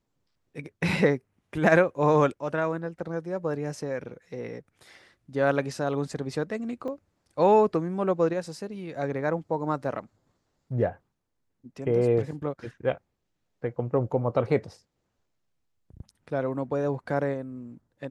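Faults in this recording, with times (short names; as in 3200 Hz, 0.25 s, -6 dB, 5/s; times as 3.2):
6.88 gap 3.3 ms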